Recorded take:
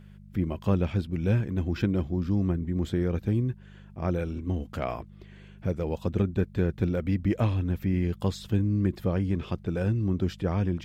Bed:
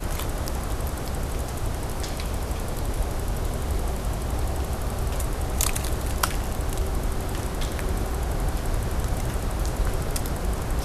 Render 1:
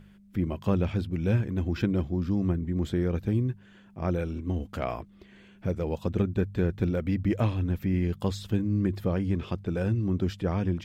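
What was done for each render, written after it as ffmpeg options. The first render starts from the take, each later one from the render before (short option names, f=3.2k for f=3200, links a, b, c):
-af "bandreject=f=50:t=h:w=4,bandreject=f=100:t=h:w=4,bandreject=f=150:t=h:w=4"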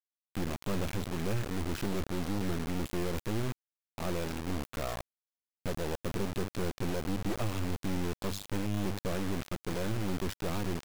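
-af "acrusher=bits=3:dc=4:mix=0:aa=0.000001,asoftclip=type=tanh:threshold=-23dB"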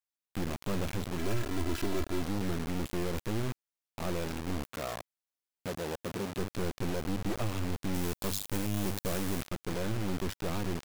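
-filter_complex "[0:a]asettb=1/sr,asplit=3[a][b][c];[a]atrim=end=1.184[d];[b]atrim=start=1.18:end=2.22,asetpts=PTS-STARTPTS,afade=t=in:d=0.004:c=qsin,afade=t=out:st=1.036:d=0.004:c=qsin,aecho=1:1:3:0.65,atrim=end_sample=45864[e];[c]atrim=start=2.216[f];[d][e]acrossfade=d=0.004:c1=hsin:c2=qsin[g];[g][f]acrossfade=d=0.004:c1=qsin:c2=hsin,asettb=1/sr,asplit=3[h][i][j];[h]atrim=end=4.734[k];[i]atrim=start=4.73:end=6.39,asetpts=PTS-STARTPTS,afade=t=in:d=0.004:c=qsin,afade=t=out:st=1.656:d=0.004:c=qsin,highpass=f=150:p=1[l];[j]atrim=start=6.386[m];[k][l]acrossfade=d=0.004:c1=hsin:c2=qsin[n];[n][m]acrossfade=d=0.004:c1=qsin:c2=hsin,asettb=1/sr,asplit=3[o][p][q];[o]atrim=end=7.944[r];[p]atrim=start=7.94:end=9.43,asetpts=PTS-STARTPTS,afade=t=in:d=0.004:c=qsin,afade=t=out:st=1.486:d=0.004:c=qsin,highshelf=f=6.6k:g=11.5[s];[q]atrim=start=9.426[t];[r][s]acrossfade=d=0.004:c1=hsin:c2=qsin[u];[u][t]acrossfade=d=0.004:c1=qsin:c2=hsin"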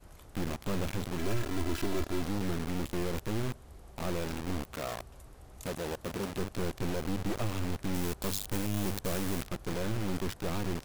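-filter_complex "[1:a]volume=-25dB[a];[0:a][a]amix=inputs=2:normalize=0"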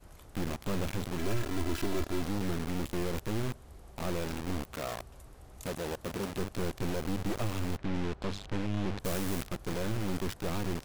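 -filter_complex "[0:a]asettb=1/sr,asplit=3[a][b][c];[a]atrim=end=7.774[d];[b]atrim=start=7.77:end=9,asetpts=PTS-STARTPTS,afade=t=in:d=0.004:c=qsin,afade=t=out:st=1.226:d=0.004:c=qsin,lowpass=3.4k[e];[c]atrim=start=8.996[f];[d][e]acrossfade=d=0.004:c1=hsin:c2=qsin[g];[g][f]acrossfade=d=0.004:c1=qsin:c2=hsin"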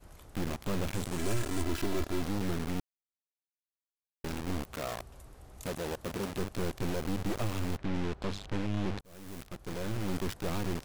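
-filter_complex "[0:a]asettb=1/sr,asplit=3[a][b][c];[a]atrim=end=0.944[d];[b]atrim=start=0.94:end=1.63,asetpts=PTS-STARTPTS,afade=t=in:d=0.004:c=qsin,afade=t=out:st=0.686:d=0.004:c=qsin,equalizer=f=8.4k:t=o:w=0.83:g=8[e];[c]atrim=start=1.626[f];[d][e]acrossfade=d=0.004:c1=hsin:c2=qsin[g];[g][f]acrossfade=d=0.004:c1=qsin:c2=hsin,asplit=4[h][i][j][k];[h]atrim=end=2.8,asetpts=PTS-STARTPTS,afade=t=out:st=2.796:d=0.004:c=hsin[l];[i]atrim=start=2.8:end=4.24,asetpts=PTS-STARTPTS,volume=0[m];[j]atrim=start=4.24:end=9.01,asetpts=PTS-STARTPTS,afade=t=in:d=0.004:c=hsin,afade=t=out:st=4.766:d=0.004:c=hsin[n];[k]atrim=start=9.01,asetpts=PTS-STARTPTS,afade=t=in:d=1.12[o];[l][m][n][o]concat=n=4:v=0:a=1"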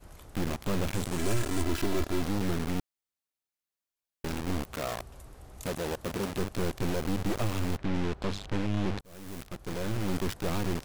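-af "volume=3dB"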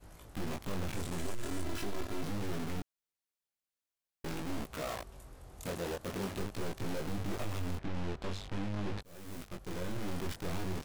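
-af "flanger=delay=18.5:depth=5:speed=0.44,asoftclip=type=tanh:threshold=-29dB"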